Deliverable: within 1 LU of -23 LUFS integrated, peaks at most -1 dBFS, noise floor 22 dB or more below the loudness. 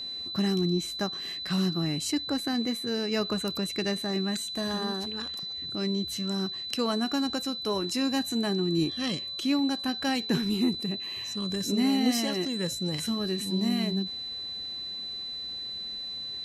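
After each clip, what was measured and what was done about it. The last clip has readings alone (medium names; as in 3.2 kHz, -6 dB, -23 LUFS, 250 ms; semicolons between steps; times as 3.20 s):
steady tone 4 kHz; tone level -34 dBFS; loudness -29.0 LUFS; peak level -11.0 dBFS; loudness target -23.0 LUFS
-> band-stop 4 kHz, Q 30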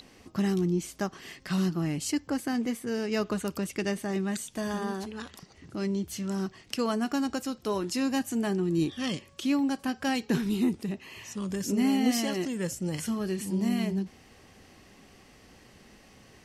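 steady tone not found; loudness -30.0 LUFS; peak level -11.5 dBFS; loudness target -23.0 LUFS
-> trim +7 dB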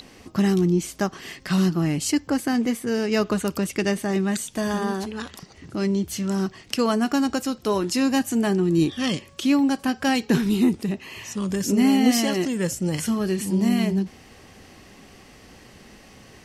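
loudness -23.0 LUFS; peak level -4.5 dBFS; noise floor -49 dBFS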